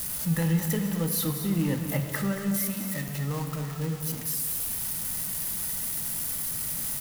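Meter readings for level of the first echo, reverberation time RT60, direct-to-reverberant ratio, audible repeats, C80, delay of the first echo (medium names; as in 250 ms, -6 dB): -10.0 dB, 2.3 s, 4.5 dB, 1, 6.0 dB, 228 ms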